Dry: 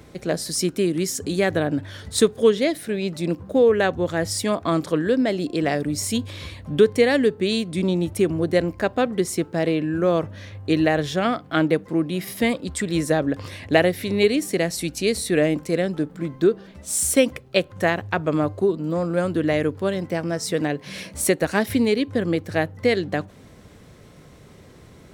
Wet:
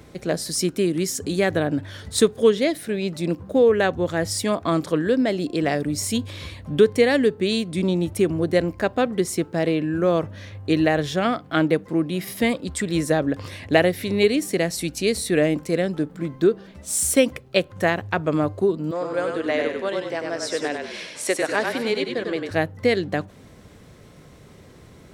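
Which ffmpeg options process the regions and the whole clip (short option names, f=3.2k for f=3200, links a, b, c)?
-filter_complex "[0:a]asettb=1/sr,asplit=3[a][b][c];[a]atrim=end=18.914[d];[b]atrim=start=18.91:end=22.51,asetpts=PTS-STARTPTS,afade=t=in:d=0.004:c=qsin,afade=t=out:st=3.596:d=0.004:c=qsin,highpass=450,lowpass=7.1k,asplit=6[e][f][g][h][i][j];[f]adelay=97,afreqshift=-32,volume=-4dB[k];[g]adelay=194,afreqshift=-64,volume=-11.3dB[l];[h]adelay=291,afreqshift=-96,volume=-18.7dB[m];[i]adelay=388,afreqshift=-128,volume=-26dB[n];[j]adelay=485,afreqshift=-160,volume=-33.3dB[o];[e][k][l][m][n][o]amix=inputs=6:normalize=0,atrim=end_sample=158760[p];[c]atrim=start=22.506[q];[d][p]acrossfade=d=0.004:c1=hsin:c2=qsin[r];[r][q]acrossfade=d=0.004:c1=qsin:c2=hsin"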